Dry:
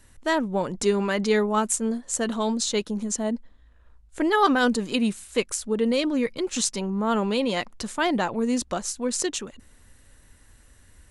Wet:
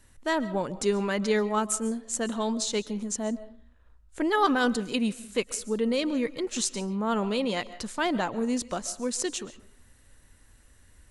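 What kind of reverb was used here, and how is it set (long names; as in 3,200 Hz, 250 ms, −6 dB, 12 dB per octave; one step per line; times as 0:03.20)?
comb and all-pass reverb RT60 0.46 s, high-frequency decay 0.6×, pre-delay 95 ms, DRR 16 dB
level −3.5 dB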